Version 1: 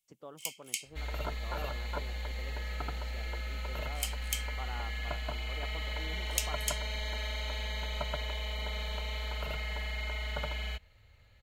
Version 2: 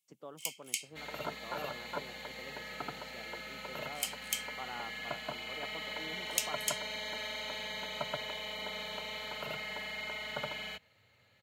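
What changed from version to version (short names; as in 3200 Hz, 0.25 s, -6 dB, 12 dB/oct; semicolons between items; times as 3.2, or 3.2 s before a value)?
master: add HPF 130 Hz 24 dB/oct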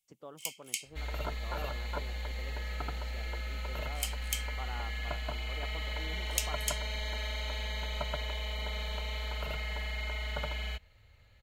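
master: remove HPF 130 Hz 24 dB/oct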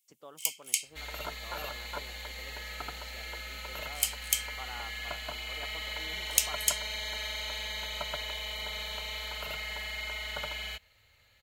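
master: add tilt +2.5 dB/oct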